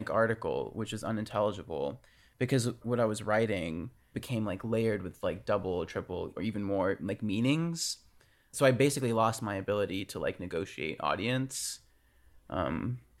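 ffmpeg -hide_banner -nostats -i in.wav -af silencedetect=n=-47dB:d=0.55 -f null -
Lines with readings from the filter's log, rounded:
silence_start: 11.77
silence_end: 12.50 | silence_duration: 0.73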